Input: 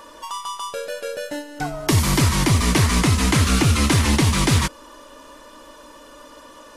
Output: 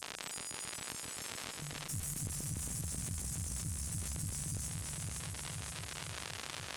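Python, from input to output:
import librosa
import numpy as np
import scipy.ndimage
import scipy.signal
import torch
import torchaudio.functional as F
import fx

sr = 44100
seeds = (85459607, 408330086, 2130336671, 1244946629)

p1 = scipy.signal.sosfilt(scipy.signal.cheby2(4, 70, [390.0, 2600.0], 'bandstop', fs=sr, output='sos'), x)
p2 = fx.resonator_bank(p1, sr, root=52, chord='fifth', decay_s=0.21)
p3 = fx.chopper(p2, sr, hz=7.4, depth_pct=65, duty_pct=80)
p4 = fx.dmg_crackle(p3, sr, seeds[0], per_s=140.0, level_db=-48.0)
p5 = fx.bandpass_edges(p4, sr, low_hz=130.0, high_hz=5600.0)
p6 = fx.low_shelf(p5, sr, hz=200.0, db=-6.5)
p7 = p6 + fx.echo_feedback(p6, sr, ms=519, feedback_pct=50, wet_db=-7.0, dry=0)
p8 = fx.cheby_harmonics(p7, sr, harmonics=(4,), levels_db=(-17,), full_scale_db=-40.0)
p9 = fx.env_flatten(p8, sr, amount_pct=70)
y = F.gain(torch.from_numpy(p9), 10.5).numpy()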